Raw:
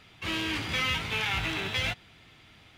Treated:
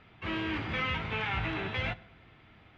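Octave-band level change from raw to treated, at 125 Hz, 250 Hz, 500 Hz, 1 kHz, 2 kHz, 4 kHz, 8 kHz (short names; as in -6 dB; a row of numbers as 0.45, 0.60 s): 0.0 dB, +0.5 dB, +0.5 dB, -0.5 dB, -3.5 dB, -9.0 dB, under -20 dB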